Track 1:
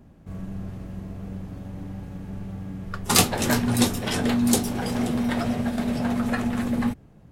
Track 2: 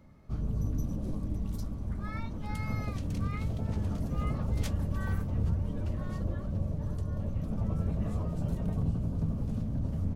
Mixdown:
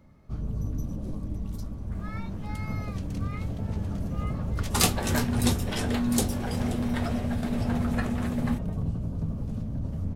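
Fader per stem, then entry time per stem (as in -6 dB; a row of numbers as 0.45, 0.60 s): -5.0, +0.5 dB; 1.65, 0.00 s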